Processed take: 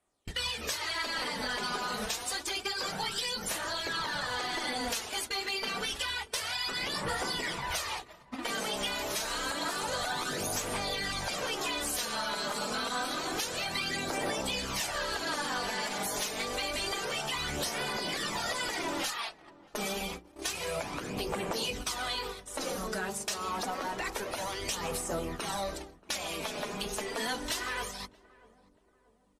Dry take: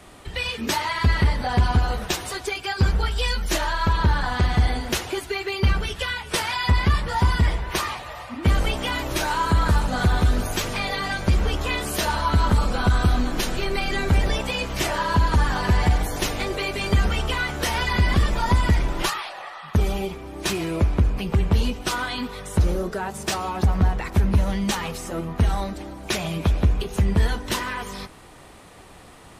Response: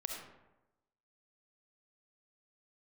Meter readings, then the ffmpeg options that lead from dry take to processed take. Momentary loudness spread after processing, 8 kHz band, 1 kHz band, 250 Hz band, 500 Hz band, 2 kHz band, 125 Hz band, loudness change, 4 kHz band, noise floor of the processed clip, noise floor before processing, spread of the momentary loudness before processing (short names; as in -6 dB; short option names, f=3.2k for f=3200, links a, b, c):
4 LU, -2.0 dB, -9.0 dB, -13.5 dB, -7.5 dB, -7.0 dB, -24.5 dB, -9.5 dB, -3.5 dB, -60 dBFS, -45 dBFS, 8 LU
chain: -filter_complex "[0:a]agate=range=-34dB:threshold=-32dB:ratio=16:detection=peak,highshelf=f=12k:g=-9,afftfilt=real='re*lt(hypot(re,im),0.282)':imag='im*lt(hypot(re,im),0.282)':win_size=1024:overlap=0.75,bass=f=250:g=-7,treble=f=4k:g=9,bandreject=f=60:t=h:w=6,bandreject=f=120:t=h:w=6,bandreject=f=180:t=h:w=6,bandreject=f=240:t=h:w=6,bandreject=f=300:t=h:w=6,bandreject=f=360:t=h:w=6,bandreject=f=420:t=h:w=6,bandreject=f=480:t=h:w=6,acompressor=threshold=-29dB:ratio=20,asoftclip=type=tanh:threshold=-26.5dB,flanger=delay=0.1:depth=4.8:regen=27:speed=0.28:shape=sinusoidal,asplit=2[a][b];[b]adelay=633,lowpass=f=940:p=1,volume=-20.5dB,asplit=2[c][d];[d]adelay=633,lowpass=f=940:p=1,volume=0.52,asplit=2[e][f];[f]adelay=633,lowpass=f=940:p=1,volume=0.52,asplit=2[g][h];[h]adelay=633,lowpass=f=940:p=1,volume=0.52[i];[c][e][g][i]amix=inputs=4:normalize=0[j];[a][j]amix=inputs=2:normalize=0,aresample=32000,aresample=44100,volume=4.5dB"